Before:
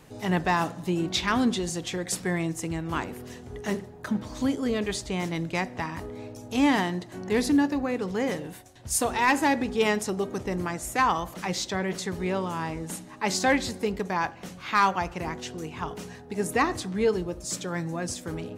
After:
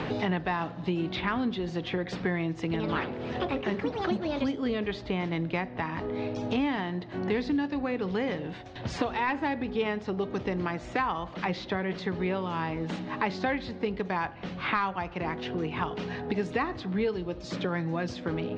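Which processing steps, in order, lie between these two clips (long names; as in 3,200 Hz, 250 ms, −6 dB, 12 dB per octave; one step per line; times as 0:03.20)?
0:02.63–0:05.03: delay with pitch and tempo change per echo 102 ms, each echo +5 semitones, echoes 2
inverse Chebyshev low-pass filter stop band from 11,000 Hz, stop band 60 dB
multiband upward and downward compressor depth 100%
level −3.5 dB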